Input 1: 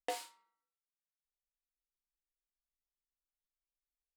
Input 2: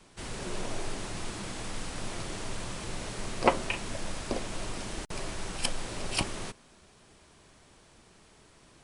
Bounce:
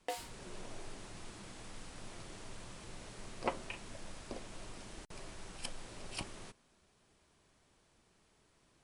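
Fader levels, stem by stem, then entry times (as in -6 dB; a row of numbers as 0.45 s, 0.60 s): -1.5 dB, -12.5 dB; 0.00 s, 0.00 s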